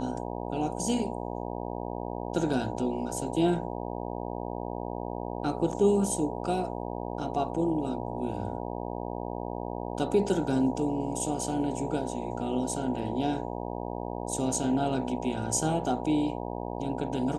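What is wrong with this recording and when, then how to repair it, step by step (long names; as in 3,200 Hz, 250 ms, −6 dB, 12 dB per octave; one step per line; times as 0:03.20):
mains buzz 60 Hz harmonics 16 −35 dBFS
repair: hum removal 60 Hz, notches 16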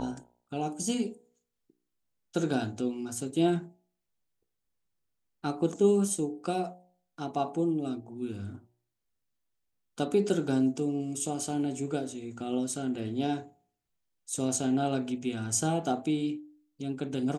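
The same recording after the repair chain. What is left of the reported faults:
none of them is left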